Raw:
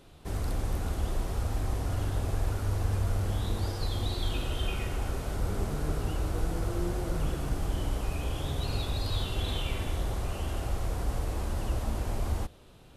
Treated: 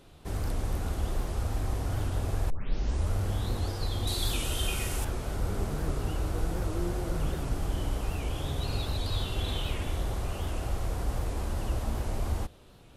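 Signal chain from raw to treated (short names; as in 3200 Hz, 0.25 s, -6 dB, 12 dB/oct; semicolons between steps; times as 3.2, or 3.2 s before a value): 2.5 tape start 0.63 s; 4.07–5.05 bell 10000 Hz +13.5 dB 2 oct; record warp 78 rpm, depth 160 cents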